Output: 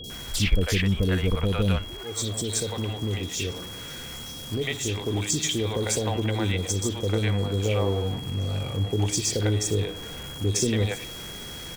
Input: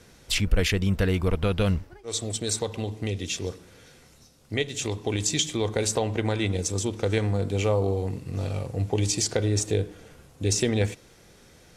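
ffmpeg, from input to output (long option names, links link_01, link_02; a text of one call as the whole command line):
ffmpeg -i in.wav -filter_complex "[0:a]aeval=exprs='val(0)+0.5*0.0188*sgn(val(0))':channel_layout=same,acrossover=split=550|3900[link_01][link_02][link_03];[link_03]adelay=40[link_04];[link_02]adelay=100[link_05];[link_01][link_05][link_04]amix=inputs=3:normalize=0,aeval=exprs='val(0)+0.0112*sin(2*PI*3300*n/s)':channel_layout=same" out.wav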